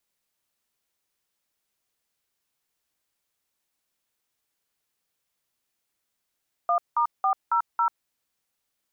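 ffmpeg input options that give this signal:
ffmpeg -f lavfi -i "aevalsrc='0.0794*clip(min(mod(t,0.275),0.091-mod(t,0.275))/0.002,0,1)*(eq(floor(t/0.275),0)*(sin(2*PI*697*mod(t,0.275))+sin(2*PI*1209*mod(t,0.275)))+eq(floor(t/0.275),1)*(sin(2*PI*941*mod(t,0.275))+sin(2*PI*1209*mod(t,0.275)))+eq(floor(t/0.275),2)*(sin(2*PI*770*mod(t,0.275))+sin(2*PI*1209*mod(t,0.275)))+eq(floor(t/0.275),3)*(sin(2*PI*941*mod(t,0.275))+sin(2*PI*1336*mod(t,0.275)))+eq(floor(t/0.275),4)*(sin(2*PI*941*mod(t,0.275))+sin(2*PI*1336*mod(t,0.275))))':duration=1.375:sample_rate=44100" out.wav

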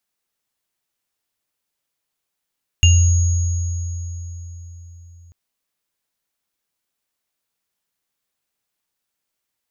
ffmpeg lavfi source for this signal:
ffmpeg -f lavfi -i "aevalsrc='0.398*pow(10,-3*t/4.29)*sin(2*PI*85.9*t)+0.251*pow(10,-3*t/0.36)*sin(2*PI*2800*t)+0.119*pow(10,-3*t/3.43)*sin(2*PI*6650*t)':duration=2.49:sample_rate=44100" out.wav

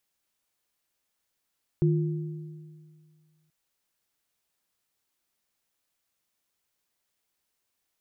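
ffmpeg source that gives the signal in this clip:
ffmpeg -f lavfi -i "aevalsrc='0.112*pow(10,-3*t/2.01)*sin(2*PI*155*t)+0.0631*pow(10,-3*t/1.57)*sin(2*PI*348*t)':duration=1.68:sample_rate=44100" out.wav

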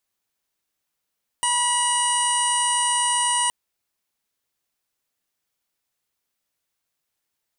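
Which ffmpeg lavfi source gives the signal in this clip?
ffmpeg -f lavfi -i "aevalsrc='0.0708*sin(2*PI*971*t)+0.0282*sin(2*PI*1942*t)+0.0501*sin(2*PI*2913*t)+0.00891*sin(2*PI*3884*t)+0.00794*sin(2*PI*4855*t)+0.0141*sin(2*PI*5826*t)+0.0112*sin(2*PI*6797*t)+0.0178*sin(2*PI*7768*t)+0.075*sin(2*PI*8739*t)+0.0141*sin(2*PI*9710*t)+0.00891*sin(2*PI*10681*t)':duration=2.07:sample_rate=44100" out.wav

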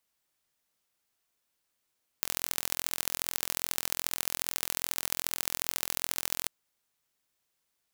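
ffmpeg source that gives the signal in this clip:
ffmpeg -f lavfi -i "aevalsrc='0.891*eq(mod(n,1038),0)*(0.5+0.5*eq(mod(n,3114),0))':duration=4.25:sample_rate=44100" out.wav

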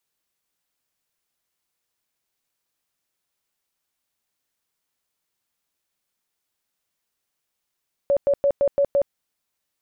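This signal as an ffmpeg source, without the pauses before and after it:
ffmpeg -f lavfi -i "aevalsrc='0.178*sin(2*PI*563*mod(t,0.17))*lt(mod(t,0.17),38/563)':duration=1.02:sample_rate=44100" out.wav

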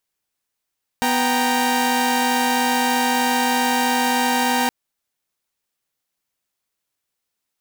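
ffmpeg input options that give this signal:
ffmpeg -f lavfi -i "aevalsrc='0.112*((2*mod(246.94*t,1)-1)+(2*mod(783.99*t,1)-1)+(2*mod(932.33*t,1)-1))':duration=3.67:sample_rate=44100" out.wav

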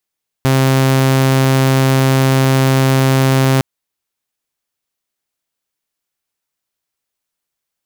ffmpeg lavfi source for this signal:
ffmpeg -f lavfi -i "aevalsrc='0.447*(2*mod(133*t,1)-1)':duration=3.16:sample_rate=44100" out.wav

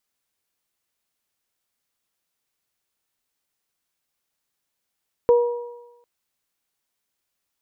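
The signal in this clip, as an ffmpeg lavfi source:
ffmpeg -f lavfi -i "aevalsrc='0.316*pow(10,-3*t/0.96)*sin(2*PI*479*t)+0.0668*pow(10,-3*t/1.16)*sin(2*PI*958*t)':duration=0.75:sample_rate=44100" out.wav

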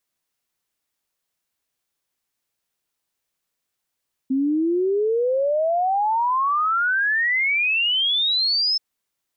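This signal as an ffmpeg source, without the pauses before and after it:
ffmpeg -f lavfi -i "aevalsrc='0.133*clip(min(t,4.48-t)/0.01,0,1)*sin(2*PI*260*4.48/log(5300/260)*(exp(log(5300/260)*t/4.48)-1))':duration=4.48:sample_rate=44100" out.wav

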